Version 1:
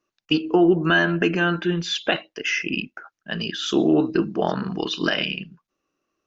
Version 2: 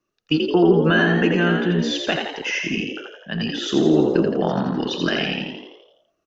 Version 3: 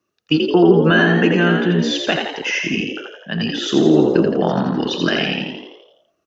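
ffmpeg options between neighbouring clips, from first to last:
-filter_complex "[0:a]acrossover=split=240|1900[a][b][c];[a]acontrast=80[d];[d][b][c]amix=inputs=3:normalize=0,asplit=9[e][f][g][h][i][j][k][l][m];[f]adelay=84,afreqshift=60,volume=-4.5dB[n];[g]adelay=168,afreqshift=120,volume=-9.5dB[o];[h]adelay=252,afreqshift=180,volume=-14.6dB[p];[i]adelay=336,afreqshift=240,volume=-19.6dB[q];[j]adelay=420,afreqshift=300,volume=-24.6dB[r];[k]adelay=504,afreqshift=360,volume=-29.7dB[s];[l]adelay=588,afreqshift=420,volume=-34.7dB[t];[m]adelay=672,afreqshift=480,volume=-39.8dB[u];[e][n][o][p][q][r][s][t][u]amix=inputs=9:normalize=0,volume=-1.5dB"
-af "highpass=62,volume=3.5dB"

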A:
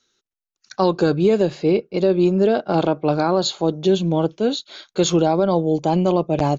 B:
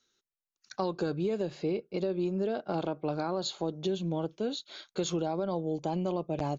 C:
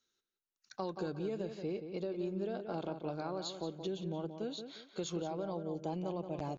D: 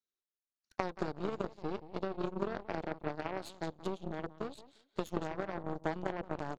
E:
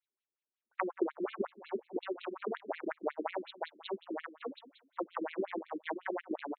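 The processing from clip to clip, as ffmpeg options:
-af "acompressor=threshold=-23dB:ratio=2.5,volume=-7.5dB"
-filter_complex "[0:a]asplit=2[a][b];[b]adelay=177,lowpass=f=3.2k:p=1,volume=-8dB,asplit=2[c][d];[d]adelay=177,lowpass=f=3.2k:p=1,volume=0.29,asplit=2[e][f];[f]adelay=177,lowpass=f=3.2k:p=1,volume=0.29[g];[a][c][e][g]amix=inputs=4:normalize=0,volume=-7.5dB"
-af "equalizer=f=430:t=o:w=2.9:g=4,aeval=exprs='0.0891*(cos(1*acos(clip(val(0)/0.0891,-1,1)))-cos(1*PI/2))+0.0282*(cos(3*acos(clip(val(0)/0.0891,-1,1)))-cos(3*PI/2))+0.002*(cos(8*acos(clip(val(0)/0.0891,-1,1)))-cos(8*PI/2))':c=same,bandreject=f=500:w=14,volume=8dB"
-af "afftfilt=real='re*between(b*sr/1024,280*pow(3100/280,0.5+0.5*sin(2*PI*5.5*pts/sr))/1.41,280*pow(3100/280,0.5+0.5*sin(2*PI*5.5*pts/sr))*1.41)':imag='im*between(b*sr/1024,280*pow(3100/280,0.5+0.5*sin(2*PI*5.5*pts/sr))/1.41,280*pow(3100/280,0.5+0.5*sin(2*PI*5.5*pts/sr))*1.41)':win_size=1024:overlap=0.75,volume=7.5dB"

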